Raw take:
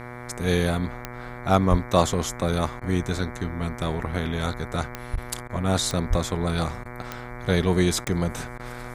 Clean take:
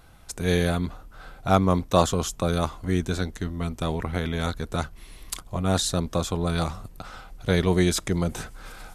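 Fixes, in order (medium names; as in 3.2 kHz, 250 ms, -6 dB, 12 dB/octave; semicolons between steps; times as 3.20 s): de-click; de-hum 122.1 Hz, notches 19; de-plosive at 1.70/5.12/6.09 s; interpolate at 2.80/5.16/5.48/6.84/8.05/8.58 s, 13 ms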